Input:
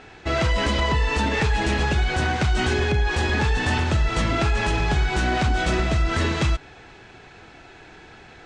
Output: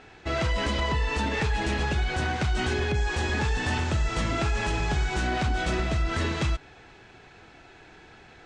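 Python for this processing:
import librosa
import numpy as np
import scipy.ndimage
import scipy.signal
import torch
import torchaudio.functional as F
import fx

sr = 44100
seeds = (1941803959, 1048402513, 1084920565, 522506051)

y = fx.dmg_noise_band(x, sr, seeds[0], low_hz=4700.0, high_hz=7800.0, level_db=-45.0, at=(2.94, 5.26), fade=0.02)
y = y * 10.0 ** (-5.0 / 20.0)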